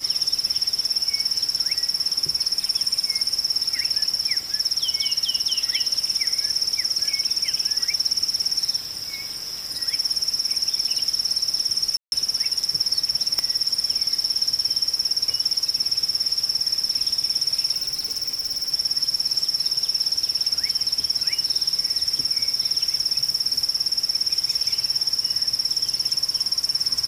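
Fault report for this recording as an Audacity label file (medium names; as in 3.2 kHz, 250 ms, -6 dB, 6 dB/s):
11.970000	12.120000	dropout 151 ms
13.390000	13.390000	pop -7 dBFS
17.760000	18.700000	clipped -21.5 dBFS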